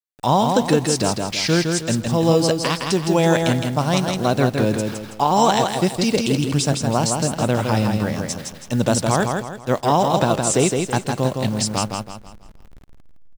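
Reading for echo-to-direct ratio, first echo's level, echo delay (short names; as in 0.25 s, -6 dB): -4.0 dB, -4.5 dB, 0.163 s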